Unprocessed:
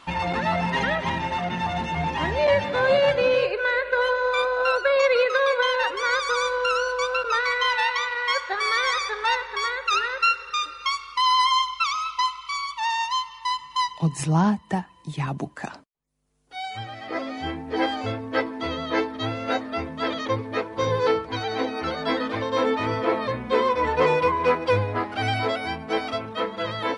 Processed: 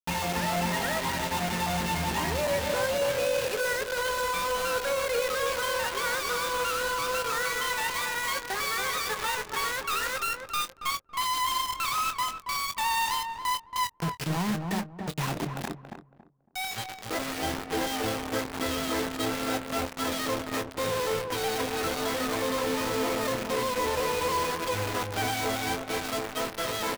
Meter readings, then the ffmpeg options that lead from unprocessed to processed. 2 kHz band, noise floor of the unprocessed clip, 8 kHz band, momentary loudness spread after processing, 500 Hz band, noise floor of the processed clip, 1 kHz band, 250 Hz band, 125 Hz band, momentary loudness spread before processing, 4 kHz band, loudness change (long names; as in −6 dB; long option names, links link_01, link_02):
−5.5 dB, −44 dBFS, +6.5 dB, 5 LU, −6.5 dB, −47 dBFS, −5.5 dB, −4.5 dB, −6.0 dB, 9 LU, −3.5 dB, −5.0 dB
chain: -filter_complex "[0:a]equalizer=frequency=120:width=2.2:gain=-3,alimiter=limit=-19.5dB:level=0:latency=1:release=167,aresample=11025,asoftclip=type=hard:threshold=-27dB,aresample=44100,acrusher=bits=4:mix=0:aa=0.000001,asplit=2[link_01][link_02];[link_02]adelay=23,volume=-11.5dB[link_03];[link_01][link_03]amix=inputs=2:normalize=0,asplit=2[link_04][link_05];[link_05]adelay=278,lowpass=frequency=990:poles=1,volume=-4dB,asplit=2[link_06][link_07];[link_07]adelay=278,lowpass=frequency=990:poles=1,volume=0.26,asplit=2[link_08][link_09];[link_09]adelay=278,lowpass=frequency=990:poles=1,volume=0.26,asplit=2[link_10][link_11];[link_11]adelay=278,lowpass=frequency=990:poles=1,volume=0.26[link_12];[link_04][link_06][link_08][link_10][link_12]amix=inputs=5:normalize=0,volume=-2dB"